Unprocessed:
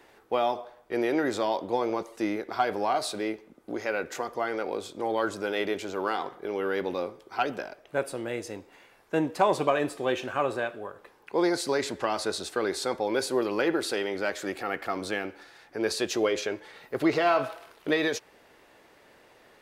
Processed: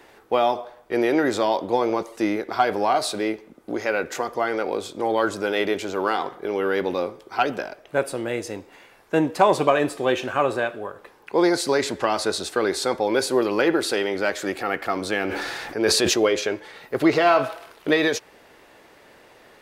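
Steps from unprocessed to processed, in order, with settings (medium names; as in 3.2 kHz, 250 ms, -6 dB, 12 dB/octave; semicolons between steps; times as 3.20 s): 15.16–16.14 s: decay stretcher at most 22 dB/s; trim +6 dB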